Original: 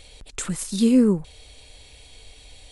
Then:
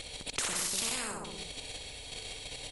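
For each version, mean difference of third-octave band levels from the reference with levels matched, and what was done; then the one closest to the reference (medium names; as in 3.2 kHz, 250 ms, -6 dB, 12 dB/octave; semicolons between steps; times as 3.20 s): 17.5 dB: level held to a coarse grid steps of 9 dB; on a send: feedback delay 63 ms, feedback 41%, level -6 dB; on the sum: spectrum-flattening compressor 10:1; trim -8.5 dB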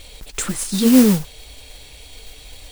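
4.5 dB: flange 1.9 Hz, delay 2.8 ms, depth 4.4 ms, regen -47%; modulation noise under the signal 13 dB; in parallel at -6 dB: saturation -23.5 dBFS, distortion -8 dB; on the sum: trim +6.5 dB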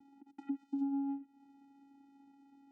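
11.5 dB: compression 20:1, threshold -31 dBFS, peak gain reduction 19.5 dB; Savitzky-Golay filter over 65 samples; vocoder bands 4, square 277 Hz; trim -1 dB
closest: second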